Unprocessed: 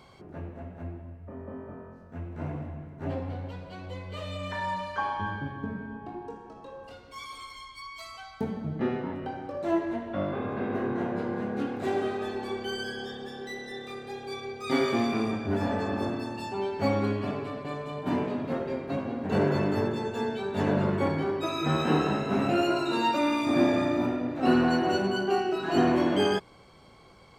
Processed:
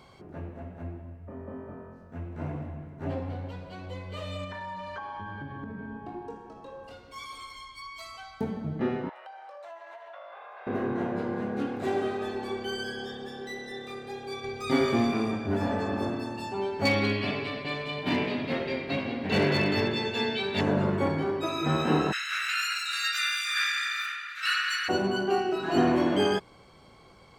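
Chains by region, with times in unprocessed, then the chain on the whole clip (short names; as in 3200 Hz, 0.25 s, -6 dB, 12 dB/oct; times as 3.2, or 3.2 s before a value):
4.44–5.96 high shelf 7500 Hz -11.5 dB + compressor 10:1, threshold -34 dBFS
9.09–10.67 steep high-pass 630 Hz + high shelf 6600 Hz -5 dB + compressor 5:1, threshold -42 dBFS
14.44–15.11 low shelf 120 Hz +10.5 dB + mismatched tape noise reduction encoder only
16.85–20.61 band shelf 3100 Hz +13 dB + hard clip -17.5 dBFS + mismatched tape noise reduction decoder only
22.11–24.88 spectral limiter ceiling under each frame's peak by 23 dB + steep high-pass 1300 Hz 72 dB/oct
whole clip: dry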